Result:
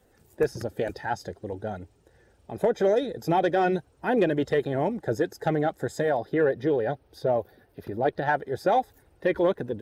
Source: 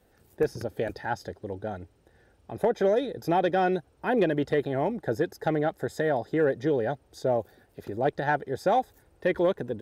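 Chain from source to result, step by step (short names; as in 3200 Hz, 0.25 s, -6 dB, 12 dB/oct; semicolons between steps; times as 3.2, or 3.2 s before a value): bin magnitudes rounded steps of 15 dB; bell 7300 Hz +4.5 dB 0.53 oct, from 6.16 s -11.5 dB, from 8.26 s -3 dB; gain +1.5 dB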